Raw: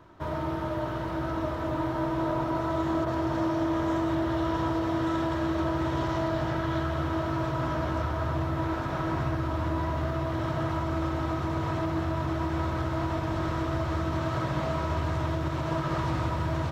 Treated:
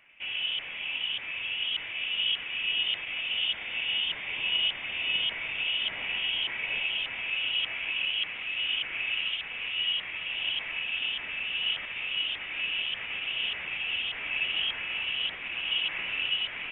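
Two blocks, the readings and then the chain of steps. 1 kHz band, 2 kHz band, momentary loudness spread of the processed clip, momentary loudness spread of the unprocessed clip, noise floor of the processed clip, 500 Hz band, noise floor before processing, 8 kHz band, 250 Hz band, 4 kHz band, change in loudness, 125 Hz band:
-17.0 dB, +9.0 dB, 4 LU, 3 LU, -39 dBFS, -21.5 dB, -32 dBFS, no reading, -27.5 dB, +19.0 dB, +0.5 dB, -29.5 dB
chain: LFO high-pass saw down 1.7 Hz 800–2000 Hz; frequency inversion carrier 3.9 kHz

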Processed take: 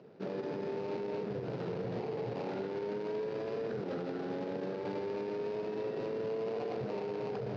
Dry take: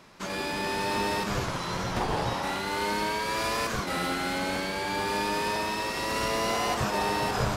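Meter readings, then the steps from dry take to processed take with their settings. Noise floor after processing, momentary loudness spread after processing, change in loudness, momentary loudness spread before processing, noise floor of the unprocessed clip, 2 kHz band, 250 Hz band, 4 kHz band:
-40 dBFS, 2 LU, -9.0 dB, 3 LU, -33 dBFS, -19.5 dB, -6.0 dB, -22.5 dB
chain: median filter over 41 samples; elliptic band-pass 120–5000 Hz, stop band 40 dB; peaking EQ 440 Hz +12.5 dB 0.38 oct; compression, threshold -29 dBFS, peak gain reduction 7.5 dB; peak limiter -29.5 dBFS, peak gain reduction 8.5 dB

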